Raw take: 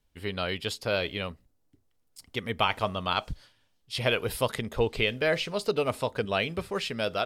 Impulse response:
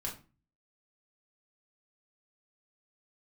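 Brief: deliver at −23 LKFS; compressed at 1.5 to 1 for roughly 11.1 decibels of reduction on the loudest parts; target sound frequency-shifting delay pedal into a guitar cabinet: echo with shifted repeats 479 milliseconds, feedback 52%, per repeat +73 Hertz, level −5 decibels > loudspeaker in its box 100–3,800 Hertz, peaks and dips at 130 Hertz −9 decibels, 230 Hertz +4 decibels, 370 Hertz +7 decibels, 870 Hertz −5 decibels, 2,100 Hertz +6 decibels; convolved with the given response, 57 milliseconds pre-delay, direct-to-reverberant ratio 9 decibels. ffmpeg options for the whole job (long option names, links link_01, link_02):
-filter_complex "[0:a]acompressor=threshold=-53dB:ratio=1.5,asplit=2[link_01][link_02];[1:a]atrim=start_sample=2205,adelay=57[link_03];[link_02][link_03]afir=irnorm=-1:irlink=0,volume=-10dB[link_04];[link_01][link_04]amix=inputs=2:normalize=0,asplit=8[link_05][link_06][link_07][link_08][link_09][link_10][link_11][link_12];[link_06]adelay=479,afreqshift=73,volume=-5dB[link_13];[link_07]adelay=958,afreqshift=146,volume=-10.7dB[link_14];[link_08]adelay=1437,afreqshift=219,volume=-16.4dB[link_15];[link_09]adelay=1916,afreqshift=292,volume=-22dB[link_16];[link_10]adelay=2395,afreqshift=365,volume=-27.7dB[link_17];[link_11]adelay=2874,afreqshift=438,volume=-33.4dB[link_18];[link_12]adelay=3353,afreqshift=511,volume=-39.1dB[link_19];[link_05][link_13][link_14][link_15][link_16][link_17][link_18][link_19]amix=inputs=8:normalize=0,highpass=100,equalizer=frequency=130:width_type=q:width=4:gain=-9,equalizer=frequency=230:width_type=q:width=4:gain=4,equalizer=frequency=370:width_type=q:width=4:gain=7,equalizer=frequency=870:width_type=q:width=4:gain=-5,equalizer=frequency=2100:width_type=q:width=4:gain=6,lowpass=frequency=3800:width=0.5412,lowpass=frequency=3800:width=1.3066,volume=14dB"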